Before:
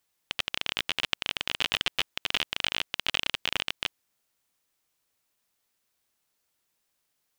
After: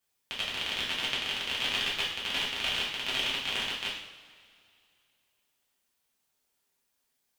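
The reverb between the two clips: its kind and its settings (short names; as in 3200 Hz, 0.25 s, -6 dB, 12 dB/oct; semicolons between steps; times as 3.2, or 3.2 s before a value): two-slope reverb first 0.69 s, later 2.6 s, from -18 dB, DRR -6.5 dB; gain -8 dB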